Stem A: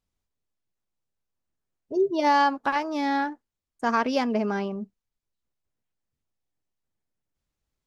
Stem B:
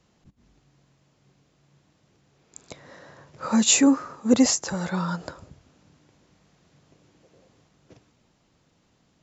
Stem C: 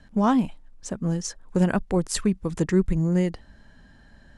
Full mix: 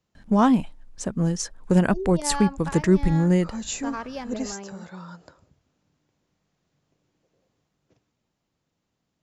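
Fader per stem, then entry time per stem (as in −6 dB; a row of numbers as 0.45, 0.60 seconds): −10.0, −13.0, +2.5 decibels; 0.00, 0.00, 0.15 seconds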